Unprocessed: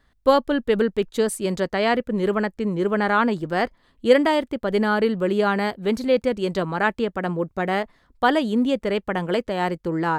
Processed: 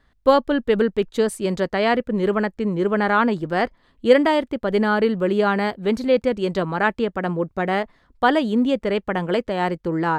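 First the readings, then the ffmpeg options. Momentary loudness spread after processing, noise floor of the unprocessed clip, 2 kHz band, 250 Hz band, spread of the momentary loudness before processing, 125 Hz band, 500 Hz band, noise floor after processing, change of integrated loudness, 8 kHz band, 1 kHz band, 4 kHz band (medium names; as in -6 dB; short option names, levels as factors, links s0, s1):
6 LU, -64 dBFS, +1.0 dB, +1.5 dB, 6 LU, +1.5 dB, +1.5 dB, -62 dBFS, +1.5 dB, no reading, +1.5 dB, 0.0 dB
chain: -af "highshelf=f=7100:g=-8,volume=1.19"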